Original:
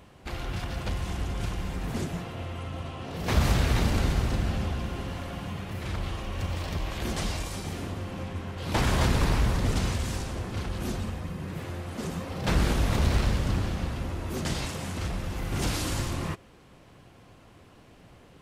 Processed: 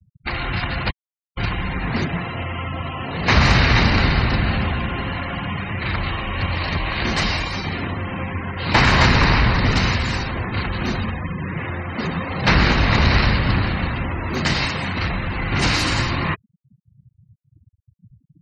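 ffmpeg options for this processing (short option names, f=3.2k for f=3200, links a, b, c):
-filter_complex "[0:a]asplit=3[a][b][c];[a]atrim=end=0.91,asetpts=PTS-STARTPTS,afade=t=out:st=0.906:d=0.004:c=hsin[d];[b]atrim=start=0.91:end=1.37,asetpts=PTS-STARTPTS,volume=0[e];[c]atrim=start=1.37,asetpts=PTS-STARTPTS,afade=t=in:d=0.004:c=hsin[f];[d][e][f]concat=n=3:v=0:a=1,equalizer=f=125:t=o:w=1:g=4,equalizer=f=250:t=o:w=1:g=3,equalizer=f=1k:t=o:w=1:g=6,equalizer=f=2k:t=o:w=1:g=10,equalizer=f=4k:t=o:w=1:g=9,afftfilt=real='re*gte(hypot(re,im),0.0251)':imag='im*gte(hypot(re,im),0.0251)':win_size=1024:overlap=0.75,bandreject=f=3.4k:w=7.5,volume=5dB"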